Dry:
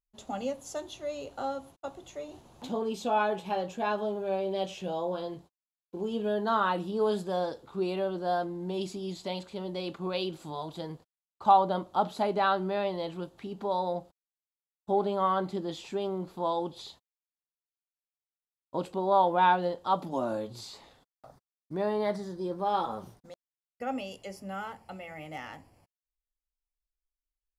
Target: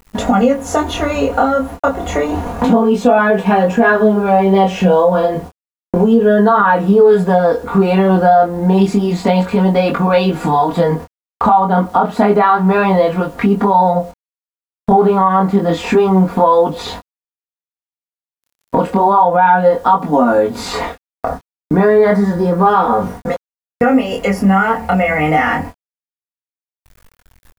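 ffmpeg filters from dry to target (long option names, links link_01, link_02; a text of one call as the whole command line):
ffmpeg -i in.wav -af "equalizer=frequency=79:width=2.3:gain=8.5,aecho=1:1:4.2:0.81,agate=range=-46dB:threshold=-52dB:ratio=16:detection=peak,highshelf=frequency=2600:width_type=q:width=1.5:gain=-10.5,acompressor=mode=upward:threshold=-26dB:ratio=2.5,acrusher=bits=10:mix=0:aa=0.000001,acompressor=threshold=-27dB:ratio=2.5,flanger=delay=20:depth=6.9:speed=0.3,alimiter=level_in=24dB:limit=-1dB:release=50:level=0:latency=1,volume=-1dB" out.wav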